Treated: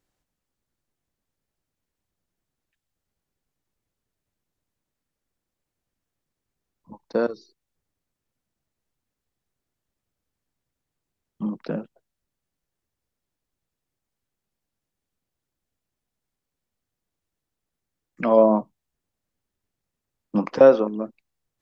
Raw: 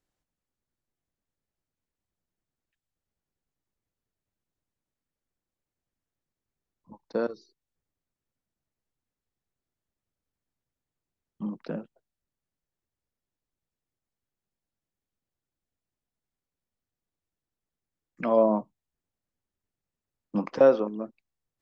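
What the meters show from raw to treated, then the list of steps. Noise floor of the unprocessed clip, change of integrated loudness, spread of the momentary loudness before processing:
under -85 dBFS, +5.5 dB, 17 LU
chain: wow and flutter 19 cents; gain +5.5 dB

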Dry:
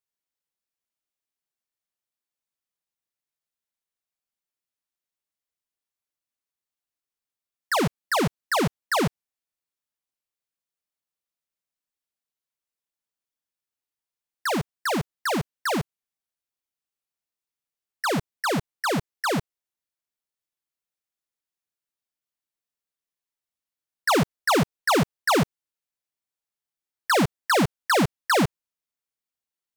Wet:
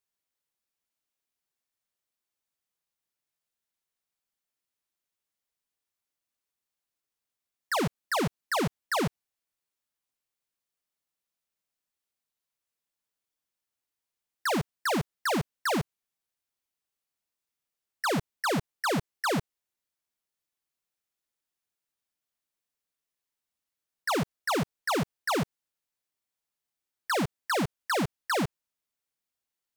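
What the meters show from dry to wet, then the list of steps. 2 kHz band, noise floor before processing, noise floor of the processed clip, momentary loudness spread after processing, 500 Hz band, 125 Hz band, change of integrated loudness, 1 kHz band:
-5.5 dB, under -85 dBFS, under -85 dBFS, 2 LU, -5.5 dB, -5.5 dB, -5.5 dB, -5.5 dB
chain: limiter -28 dBFS, peak gain reduction 9.5 dB; gain +2 dB

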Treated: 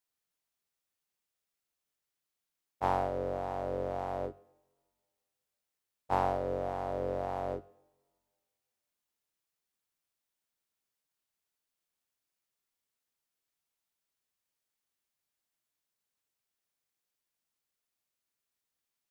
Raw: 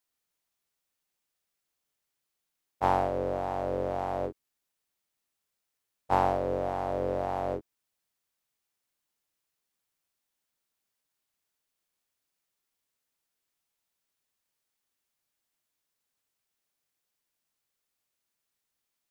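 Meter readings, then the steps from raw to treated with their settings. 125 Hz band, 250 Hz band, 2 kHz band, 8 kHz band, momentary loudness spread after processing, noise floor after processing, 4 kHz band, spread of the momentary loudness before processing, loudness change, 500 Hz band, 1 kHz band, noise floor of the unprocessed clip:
-3.5 dB, -5.0 dB, -4.5 dB, n/a, 7 LU, under -85 dBFS, -4.5 dB, 8 LU, -4.0 dB, -4.0 dB, -4.5 dB, -84 dBFS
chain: two-slope reverb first 0.79 s, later 2.3 s, from -19 dB, DRR 17.5 dB; gain -4.5 dB

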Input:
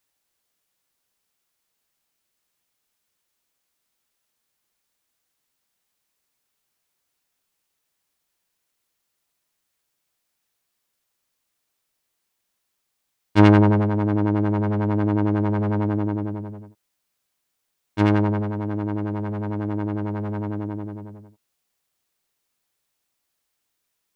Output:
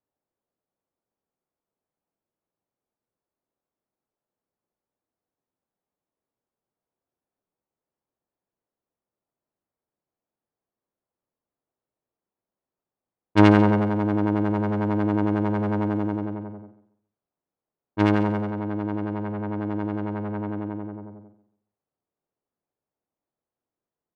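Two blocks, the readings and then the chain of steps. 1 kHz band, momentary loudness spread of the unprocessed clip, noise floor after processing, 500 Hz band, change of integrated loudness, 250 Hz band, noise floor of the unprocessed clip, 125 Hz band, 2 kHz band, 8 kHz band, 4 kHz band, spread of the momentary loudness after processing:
0.0 dB, 14 LU, under -85 dBFS, -0.5 dB, -1.5 dB, -1.0 dB, -77 dBFS, -4.5 dB, 0.0 dB, n/a, 0.0 dB, 15 LU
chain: low-pass opened by the level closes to 690 Hz, open at -18 dBFS; low shelf 82 Hz -10 dB; on a send: feedback echo 0.139 s, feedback 27%, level -14.5 dB

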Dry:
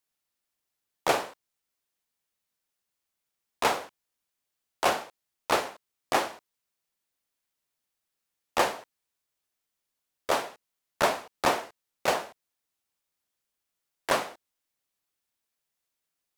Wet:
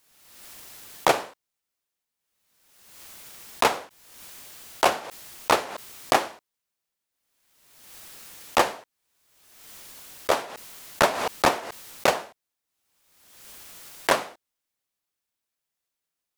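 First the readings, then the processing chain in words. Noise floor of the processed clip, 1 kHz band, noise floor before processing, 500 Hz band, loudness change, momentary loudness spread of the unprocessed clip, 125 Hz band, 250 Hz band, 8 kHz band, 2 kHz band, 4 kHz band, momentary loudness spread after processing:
-85 dBFS, +4.0 dB, -84 dBFS, +4.0 dB, +4.0 dB, 16 LU, +5.0 dB, +4.0 dB, +4.5 dB, +4.0 dB, +4.0 dB, 20 LU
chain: transient shaper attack +7 dB, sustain +1 dB; backwards sustainer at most 46 dB/s; gain -1.5 dB

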